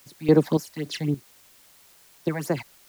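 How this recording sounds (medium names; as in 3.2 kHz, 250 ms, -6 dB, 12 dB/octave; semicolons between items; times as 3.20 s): phasing stages 8, 3.7 Hz, lowest notch 360–3500 Hz; random-step tremolo, depth 80%; a quantiser's noise floor 10-bit, dither triangular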